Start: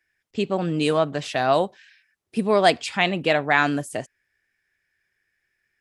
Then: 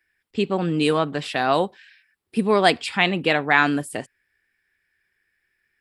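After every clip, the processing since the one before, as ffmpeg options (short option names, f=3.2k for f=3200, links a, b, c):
-af "equalizer=f=125:t=o:w=0.33:g=-7,equalizer=f=630:t=o:w=0.33:g=-7,equalizer=f=6.3k:t=o:w=0.33:g=-11,volume=2.5dB"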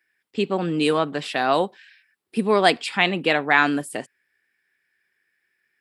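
-af "highpass=170"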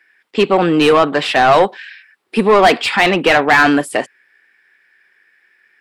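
-filter_complex "[0:a]asplit=2[a][b];[b]highpass=f=720:p=1,volume=24dB,asoftclip=type=tanh:threshold=-1.5dB[c];[a][c]amix=inputs=2:normalize=0,lowpass=f=1.9k:p=1,volume=-6dB,volume=1.5dB"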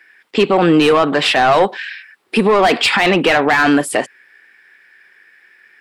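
-af "alimiter=limit=-12dB:level=0:latency=1:release=105,volume=6.5dB"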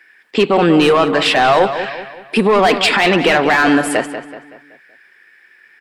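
-filter_complex "[0:a]asplit=2[a][b];[b]adelay=189,lowpass=f=4.1k:p=1,volume=-10dB,asplit=2[c][d];[d]adelay=189,lowpass=f=4.1k:p=1,volume=0.45,asplit=2[e][f];[f]adelay=189,lowpass=f=4.1k:p=1,volume=0.45,asplit=2[g][h];[h]adelay=189,lowpass=f=4.1k:p=1,volume=0.45,asplit=2[i][j];[j]adelay=189,lowpass=f=4.1k:p=1,volume=0.45[k];[a][c][e][g][i][k]amix=inputs=6:normalize=0"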